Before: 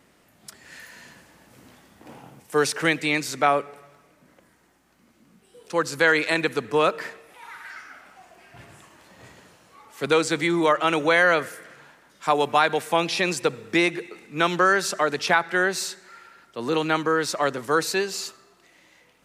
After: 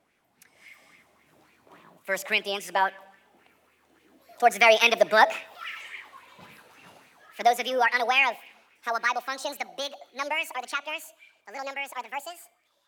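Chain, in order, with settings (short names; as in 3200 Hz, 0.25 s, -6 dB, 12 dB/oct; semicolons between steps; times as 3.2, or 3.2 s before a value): speed glide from 108% -> 191%; Doppler pass-by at 5.11, 20 m/s, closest 25 m; LFO bell 3.6 Hz 610–2500 Hz +11 dB; gain -1.5 dB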